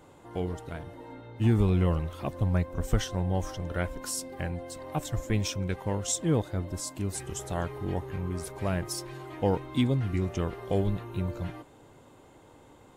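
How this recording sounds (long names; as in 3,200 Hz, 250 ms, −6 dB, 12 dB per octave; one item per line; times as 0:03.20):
background noise floor −55 dBFS
spectral slope −6.0 dB per octave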